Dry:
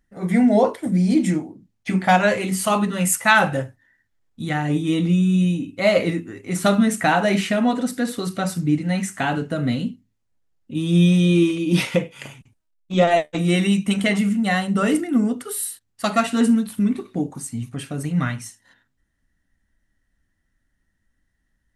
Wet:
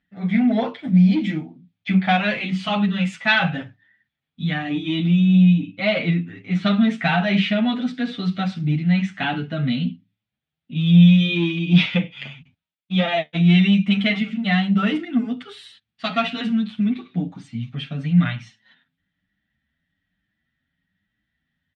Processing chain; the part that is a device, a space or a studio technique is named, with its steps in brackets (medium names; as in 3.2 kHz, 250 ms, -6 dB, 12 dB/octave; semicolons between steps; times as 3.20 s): barber-pole flanger into a guitar amplifier (endless flanger 8 ms +1.1 Hz; saturation -11 dBFS, distortion -21 dB; cabinet simulation 96–4200 Hz, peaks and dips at 170 Hz +7 dB, 370 Hz -10 dB, 520 Hz -7 dB, 1 kHz -6 dB, 2.4 kHz +6 dB, 3.4 kHz +9 dB); 5.35–6.77 s: treble shelf 5.8 kHz -5.5 dB; trim +2 dB